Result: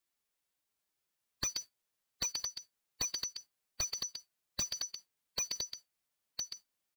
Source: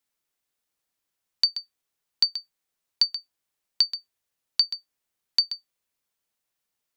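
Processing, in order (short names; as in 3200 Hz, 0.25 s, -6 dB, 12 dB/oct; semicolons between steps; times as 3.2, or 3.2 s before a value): dynamic EQ 760 Hz, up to -3 dB, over -53 dBFS, Q 2; formant-preserving pitch shift +4.5 st; on a send: echo 1.01 s -9.5 dB; on the sum: slew limiter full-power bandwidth 170 Hz; gain -2 dB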